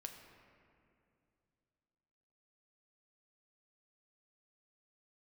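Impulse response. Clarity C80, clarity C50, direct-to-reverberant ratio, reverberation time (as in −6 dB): 7.0 dB, 6.0 dB, 3.5 dB, 2.6 s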